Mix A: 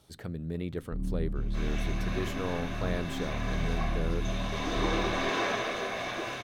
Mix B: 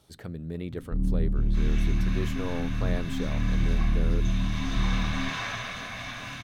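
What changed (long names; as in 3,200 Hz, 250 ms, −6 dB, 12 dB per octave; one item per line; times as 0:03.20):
first sound: add low-shelf EQ 490 Hz +7.5 dB
second sound: add high-pass filter 1,100 Hz 12 dB per octave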